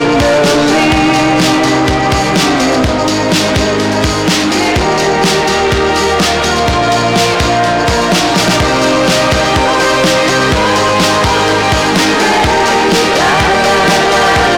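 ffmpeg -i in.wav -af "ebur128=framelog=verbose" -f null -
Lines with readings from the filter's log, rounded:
Integrated loudness:
  I:          -9.8 LUFS
  Threshold: -19.8 LUFS
Loudness range:
  LRA:         1.5 LU
  Threshold: -30.0 LUFS
  LRA low:   -10.8 LUFS
  LRA high:   -9.2 LUFS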